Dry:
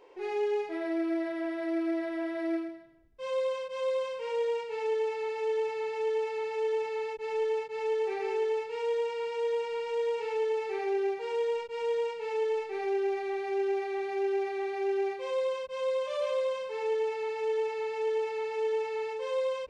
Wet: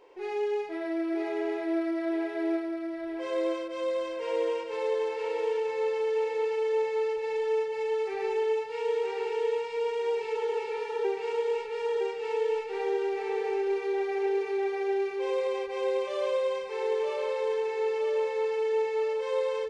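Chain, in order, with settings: spectral repair 10.37–11.02, 270–2000 Hz before; feedback echo 0.96 s, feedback 39%, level -4.5 dB

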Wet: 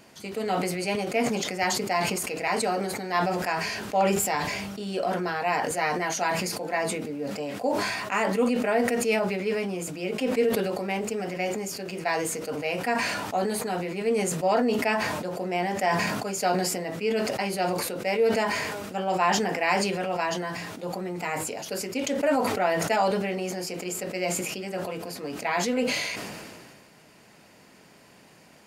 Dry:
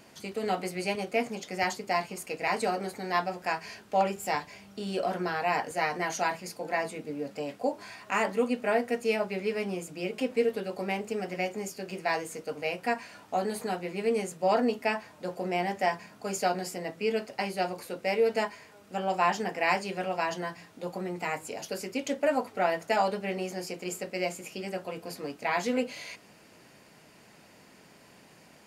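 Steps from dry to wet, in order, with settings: sustainer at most 29 dB/s; gain +1.5 dB

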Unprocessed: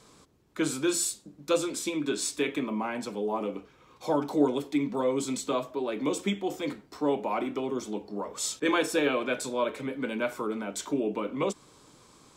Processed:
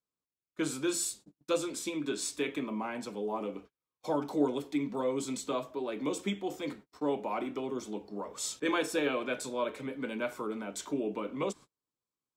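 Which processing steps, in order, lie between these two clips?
gate -44 dBFS, range -36 dB; gain -4.5 dB

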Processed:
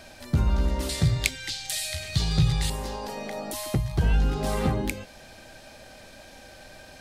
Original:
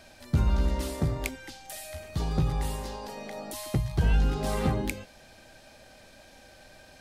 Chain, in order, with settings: 0.89–2.7 ten-band EQ 125 Hz +9 dB, 250 Hz -7 dB, 500 Hz -3 dB, 1000 Hz -5 dB, 2000 Hz +5 dB, 4000 Hz +12 dB, 8000 Hz +7 dB; in parallel at -1 dB: compressor, threshold -36 dBFS, peak gain reduction 17 dB

